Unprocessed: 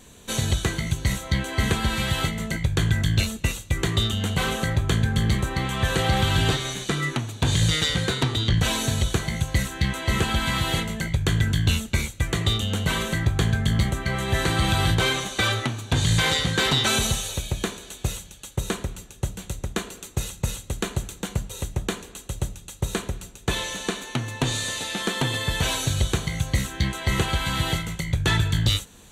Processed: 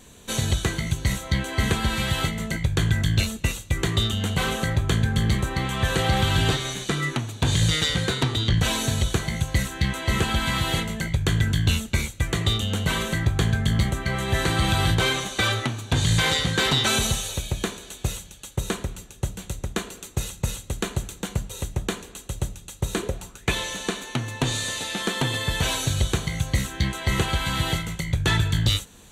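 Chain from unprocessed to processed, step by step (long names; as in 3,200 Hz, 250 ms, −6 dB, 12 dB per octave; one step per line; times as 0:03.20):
0:22.96–0:23.50: parametric band 290 Hz → 2,400 Hz +13 dB 0.43 octaves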